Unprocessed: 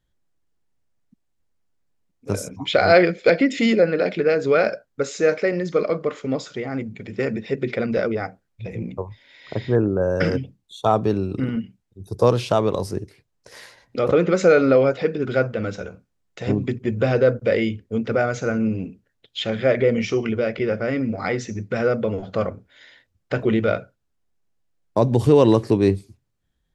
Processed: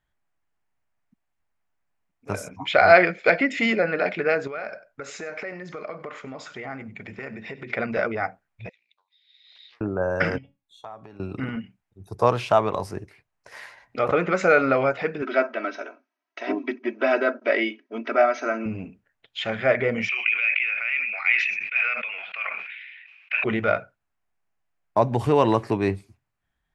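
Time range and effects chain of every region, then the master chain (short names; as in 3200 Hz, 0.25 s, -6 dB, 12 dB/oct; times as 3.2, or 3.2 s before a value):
4.47–7.7 compressor 10:1, threshold -27 dBFS + echo 96 ms -17.5 dB
8.69–9.81 ladder band-pass 4000 Hz, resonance 85% + Doppler distortion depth 0.28 ms
10.38–11.2 resonator 280 Hz, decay 0.2 s, mix 70% + compressor 10:1, threshold -35 dBFS
15.22–18.66 brick-wall FIR band-pass 220–6500 Hz + comb 3.1 ms, depth 77%
20.09–23.44 resonant high-pass 2500 Hz, resonance Q 13 + air absorption 340 m + sustainer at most 33 dB/s
whole clip: band shelf 1300 Hz +10 dB 2.4 oct; notch 520 Hz, Q 15; gain -6.5 dB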